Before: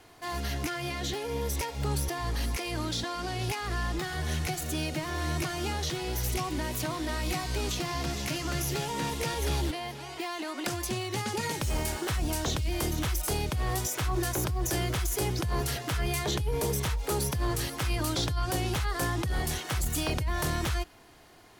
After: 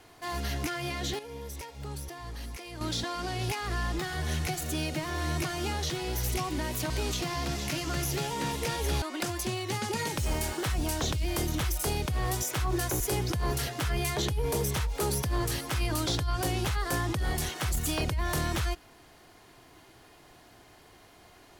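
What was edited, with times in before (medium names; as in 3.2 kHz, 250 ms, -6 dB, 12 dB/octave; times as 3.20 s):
1.19–2.81 s: gain -9 dB
6.90–7.48 s: delete
9.60–10.46 s: delete
14.44–15.09 s: delete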